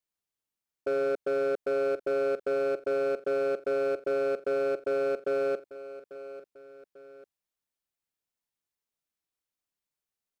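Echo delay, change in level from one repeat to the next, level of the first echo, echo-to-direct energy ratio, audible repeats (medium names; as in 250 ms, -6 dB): 844 ms, -7.0 dB, -15.5 dB, -14.5 dB, 2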